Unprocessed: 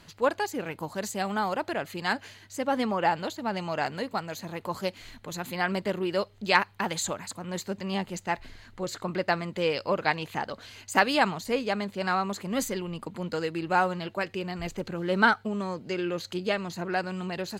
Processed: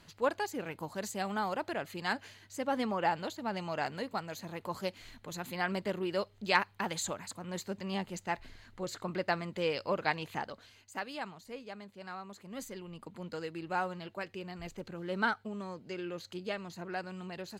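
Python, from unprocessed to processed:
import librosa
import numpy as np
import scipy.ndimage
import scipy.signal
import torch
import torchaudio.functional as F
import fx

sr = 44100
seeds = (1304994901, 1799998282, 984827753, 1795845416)

y = fx.gain(x, sr, db=fx.line((10.39, -5.5), (10.92, -17.0), (12.24, -17.0), (13.12, -9.5)))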